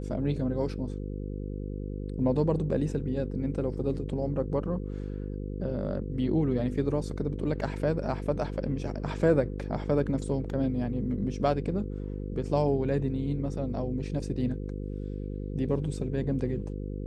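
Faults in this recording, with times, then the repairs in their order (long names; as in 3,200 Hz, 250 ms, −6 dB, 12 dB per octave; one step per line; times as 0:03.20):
mains buzz 50 Hz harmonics 10 −35 dBFS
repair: hum removal 50 Hz, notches 10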